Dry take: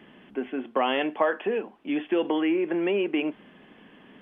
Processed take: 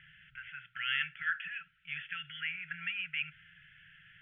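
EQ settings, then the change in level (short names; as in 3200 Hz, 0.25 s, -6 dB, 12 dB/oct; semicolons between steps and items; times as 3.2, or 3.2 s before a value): brick-wall FIR band-stop 160–1300 Hz; LPF 3100 Hz 24 dB/oct; 0.0 dB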